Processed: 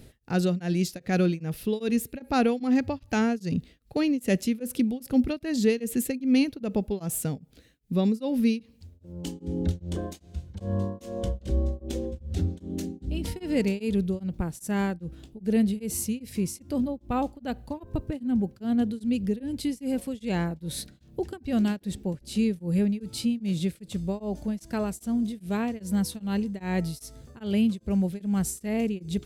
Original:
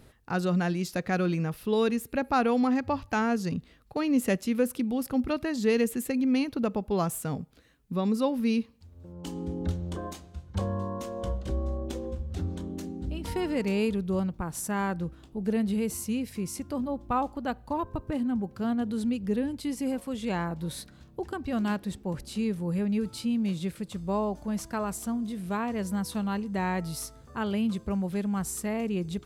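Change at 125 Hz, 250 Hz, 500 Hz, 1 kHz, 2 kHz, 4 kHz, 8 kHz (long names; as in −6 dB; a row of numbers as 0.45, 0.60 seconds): +2.5, +2.5, 0.0, −4.0, −1.0, +2.0, +2.0 decibels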